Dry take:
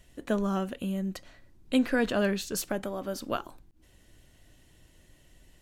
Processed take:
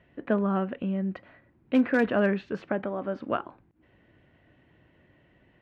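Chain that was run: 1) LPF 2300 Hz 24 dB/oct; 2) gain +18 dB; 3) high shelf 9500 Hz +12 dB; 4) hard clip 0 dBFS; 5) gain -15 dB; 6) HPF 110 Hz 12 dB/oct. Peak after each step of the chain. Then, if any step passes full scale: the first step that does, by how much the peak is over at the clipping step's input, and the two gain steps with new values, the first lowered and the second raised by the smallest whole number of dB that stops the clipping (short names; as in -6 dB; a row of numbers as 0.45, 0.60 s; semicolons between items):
-14.5, +3.5, +3.5, 0.0, -15.0, -12.5 dBFS; step 2, 3.5 dB; step 2 +14 dB, step 5 -11 dB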